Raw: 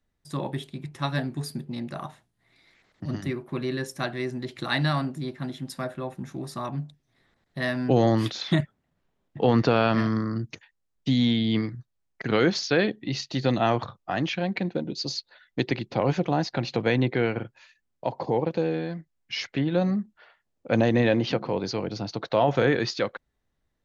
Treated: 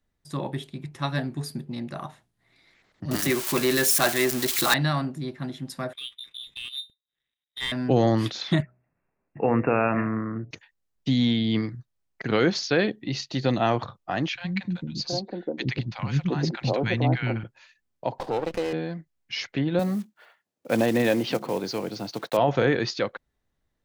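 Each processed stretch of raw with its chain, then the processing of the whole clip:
0:03.11–0:04.74: spike at every zero crossing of −24 dBFS + high-pass filter 470 Hz 6 dB per octave + leveller curve on the samples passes 3
0:05.93–0:07.72: voice inversion scrambler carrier 3,800 Hz + power curve on the samples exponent 1.4
0:08.62–0:10.51: linear-phase brick-wall low-pass 2,800 Hz + low-shelf EQ 160 Hz −6 dB + hum removal 62 Hz, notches 11
0:14.28–0:17.44: linear-phase brick-wall low-pass 8,000 Hz + low-shelf EQ 150 Hz +7 dB + three-band delay without the direct sound highs, lows, mids 70/720 ms, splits 250/990 Hz
0:18.18–0:18.73: high-pass filter 330 Hz 6 dB per octave + flat-topped bell 3,400 Hz +10 dB 1.3 octaves + windowed peak hold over 9 samples
0:19.79–0:22.39: one scale factor per block 5 bits + high-pass filter 160 Hz
whole clip: no processing

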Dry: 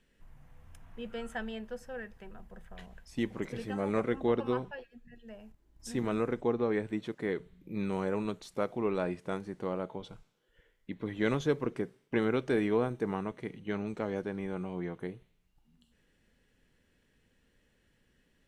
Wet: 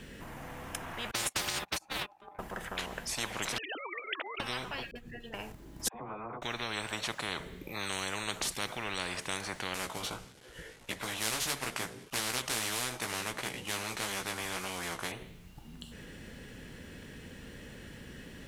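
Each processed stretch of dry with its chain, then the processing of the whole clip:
0:01.11–0:02.39: noise gate −40 dBFS, range −46 dB + ring modulation 810 Hz + every bin compressed towards the loudest bin 2 to 1
0:03.58–0:04.40: three sine waves on the formant tracks + high-pass filter 870 Hz + notch filter 1,200 Hz, Q 20
0:04.91–0:05.34: downward compressor 5 to 1, threshold −58 dBFS + all-pass dispersion highs, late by 45 ms, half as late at 610 Hz
0:05.88–0:06.42: formant resonators in series a + double-tracking delay 14 ms −2.5 dB + all-pass dispersion lows, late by 65 ms, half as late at 640 Hz
0:09.74–0:15.12: variable-slope delta modulation 64 kbit/s + chorus effect 1.6 Hz, delay 15 ms, depth 3 ms
whole clip: high-pass filter 140 Hz 6 dB per octave; low-shelf EQ 190 Hz +10 dB; every bin compressed towards the loudest bin 10 to 1

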